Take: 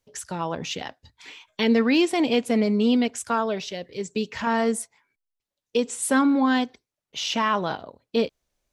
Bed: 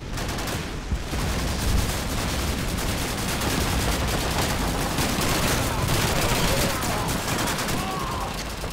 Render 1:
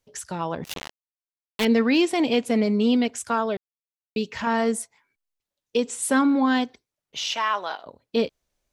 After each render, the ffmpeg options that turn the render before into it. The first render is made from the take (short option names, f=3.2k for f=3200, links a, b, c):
-filter_complex "[0:a]asettb=1/sr,asplit=3[a][b][c];[a]atrim=end=0.644[d];[b]atrim=start=0.64:end=1.65,asetpts=PTS-STARTPTS,afade=t=in:d=0.004:c=qsin,afade=t=out:st=1.006:d=0.004:c=qsin,acrusher=bits=3:mix=0:aa=0.5[e];[c]atrim=start=1.646[f];[d][e]acrossfade=d=0.004:c1=hsin:c2=qsin[g];[g][f]acrossfade=d=0.004:c1=qsin:c2=hsin,asettb=1/sr,asplit=3[h][i][j];[h]atrim=end=7.334[k];[i]atrim=start=7.33:end=7.86,asetpts=PTS-STARTPTS,afade=t=in:d=0.004:c=qsin,afade=t=out:st=0.526:d=0.004:c=qsin,highpass=690[l];[j]atrim=start=7.856[m];[k][l]acrossfade=d=0.004:c1=hsin:c2=qsin[n];[n][m]acrossfade=d=0.004:c1=qsin:c2=hsin,asplit=3[o][p][q];[o]atrim=end=3.57,asetpts=PTS-STARTPTS,afade=t=out:st=3.566:d=0.004:c=hsin[r];[p]atrim=start=3.57:end=4.16,asetpts=PTS-STARTPTS,volume=0[s];[q]atrim=start=4.16,asetpts=PTS-STARTPTS,afade=t=in:d=0.004:c=hsin[t];[r][s][t]concat=n=3:v=0:a=1"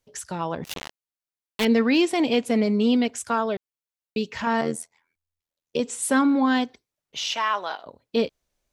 -filter_complex "[0:a]asettb=1/sr,asplit=3[a][b][c];[a]atrim=end=4.614[d];[b]atrim=start=4.61:end=5.8,asetpts=PTS-STARTPTS,afade=t=in:d=0.004:c=qsin,afade=t=out:st=1.186:d=0.004:c=qsin,tremolo=f=83:d=0.857[e];[c]atrim=start=5.796[f];[d][e]acrossfade=d=0.004:c1=hsin:c2=qsin[g];[g][f]acrossfade=d=0.004:c1=qsin:c2=hsin"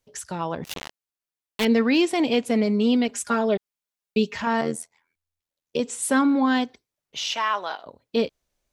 -filter_complex "[0:a]asettb=1/sr,asplit=3[a][b][c];[a]atrim=end=3.084[d];[b]atrim=start=3.08:end=4.37,asetpts=PTS-STARTPTS,afade=t=in:d=0.004:c=qsin,afade=t=out:st=1.286:d=0.004:c=qsin,aecho=1:1:4.9:0.93,atrim=end_sample=56889[e];[c]atrim=start=4.366[f];[d][e]acrossfade=d=0.004:c1=hsin:c2=qsin[g];[g][f]acrossfade=d=0.004:c1=qsin:c2=hsin"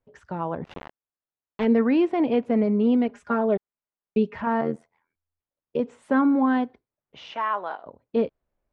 -af "lowpass=1.4k"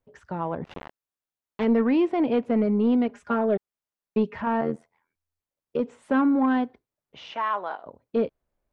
-af "asoftclip=type=tanh:threshold=-12.5dB"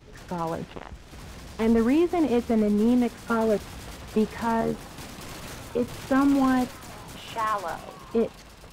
-filter_complex "[1:a]volume=-16.5dB[a];[0:a][a]amix=inputs=2:normalize=0"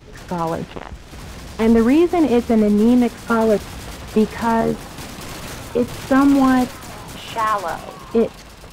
-af "volume=7.5dB"